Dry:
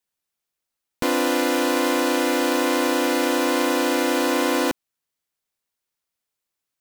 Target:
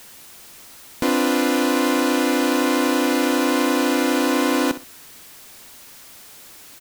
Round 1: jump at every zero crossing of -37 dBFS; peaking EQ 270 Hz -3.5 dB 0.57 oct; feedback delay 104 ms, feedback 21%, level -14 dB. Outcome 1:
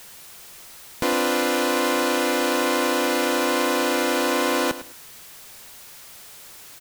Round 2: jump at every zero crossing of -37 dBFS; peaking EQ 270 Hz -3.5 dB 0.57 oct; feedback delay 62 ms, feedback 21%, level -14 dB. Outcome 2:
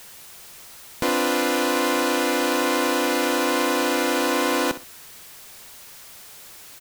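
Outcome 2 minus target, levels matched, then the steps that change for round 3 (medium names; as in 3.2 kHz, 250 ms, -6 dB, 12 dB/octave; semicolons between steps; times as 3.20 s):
250 Hz band -3.5 dB
change: peaking EQ 270 Hz +3.5 dB 0.57 oct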